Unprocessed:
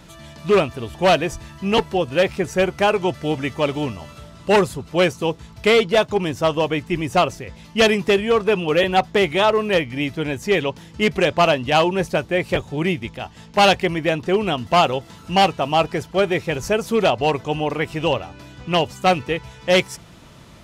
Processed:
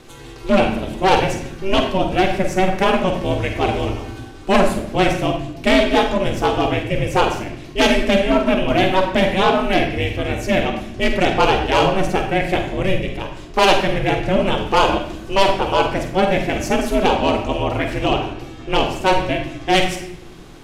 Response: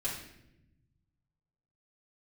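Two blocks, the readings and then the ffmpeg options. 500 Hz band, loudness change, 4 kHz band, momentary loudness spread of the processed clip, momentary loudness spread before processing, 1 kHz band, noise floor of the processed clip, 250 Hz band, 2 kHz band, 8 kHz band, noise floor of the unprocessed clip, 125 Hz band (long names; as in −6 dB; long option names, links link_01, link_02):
0.0 dB, +1.5 dB, +1.0 dB, 8 LU, 10 LU, +2.5 dB, −36 dBFS, +3.5 dB, +1.5 dB, +1.5 dB, −44 dBFS, +2.5 dB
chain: -filter_complex "[0:a]asoftclip=type=tanh:threshold=-8dB,aeval=exprs='val(0)*sin(2*PI*190*n/s)':channel_layout=same,asplit=2[link_01][link_02];[1:a]atrim=start_sample=2205,adelay=44[link_03];[link_02][link_03]afir=irnorm=-1:irlink=0,volume=-7.5dB[link_04];[link_01][link_04]amix=inputs=2:normalize=0,volume=4dB"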